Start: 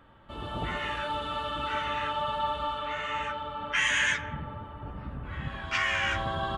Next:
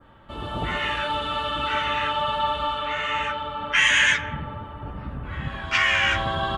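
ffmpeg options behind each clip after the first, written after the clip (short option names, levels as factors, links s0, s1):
-af "adynamicequalizer=threshold=0.0112:dfrequency=2800:dqfactor=0.93:tfrequency=2800:tqfactor=0.93:attack=5:release=100:ratio=0.375:range=2:mode=boostabove:tftype=bell,volume=1.78"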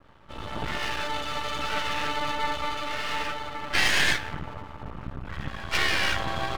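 -af "aeval=exprs='max(val(0),0)':c=same"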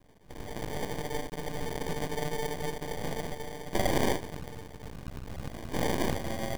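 -af "acrusher=samples=33:mix=1:aa=0.000001,volume=0.596"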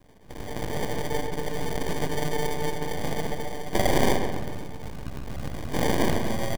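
-filter_complex "[0:a]asplit=2[s0][s1];[s1]adelay=134,lowpass=f=3100:p=1,volume=0.473,asplit=2[s2][s3];[s3]adelay=134,lowpass=f=3100:p=1,volume=0.53,asplit=2[s4][s5];[s5]adelay=134,lowpass=f=3100:p=1,volume=0.53,asplit=2[s6][s7];[s7]adelay=134,lowpass=f=3100:p=1,volume=0.53,asplit=2[s8][s9];[s9]adelay=134,lowpass=f=3100:p=1,volume=0.53,asplit=2[s10][s11];[s11]adelay=134,lowpass=f=3100:p=1,volume=0.53,asplit=2[s12][s13];[s13]adelay=134,lowpass=f=3100:p=1,volume=0.53[s14];[s0][s2][s4][s6][s8][s10][s12][s14]amix=inputs=8:normalize=0,volume=1.68"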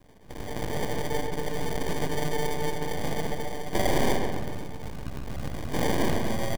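-af "asoftclip=type=tanh:threshold=0.237"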